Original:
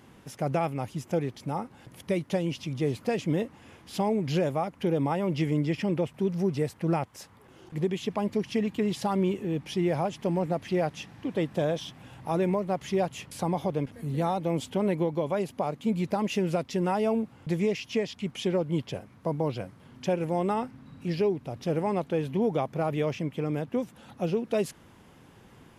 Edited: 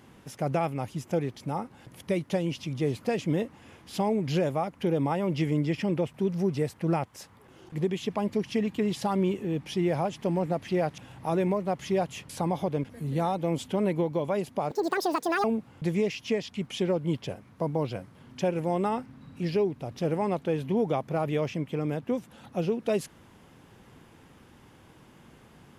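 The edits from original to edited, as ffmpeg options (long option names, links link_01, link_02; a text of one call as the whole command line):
ffmpeg -i in.wav -filter_complex "[0:a]asplit=4[link_01][link_02][link_03][link_04];[link_01]atrim=end=10.982[link_05];[link_02]atrim=start=11.998:end=15.734[link_06];[link_03]atrim=start=15.73:end=17.09,asetpts=PTS-STARTPTS,asetrate=82026,aresample=44100,atrim=end_sample=32245,asetpts=PTS-STARTPTS[link_07];[link_04]atrim=start=17.086[link_08];[link_05][link_06]acrossfade=duration=0.004:curve1=hsin:curve2=hsin[link_09];[link_09][link_07]acrossfade=duration=0.004:curve1=hsin:curve2=hsin[link_10];[link_10][link_08]acrossfade=duration=0.004:curve1=hsin:curve2=hsin" out.wav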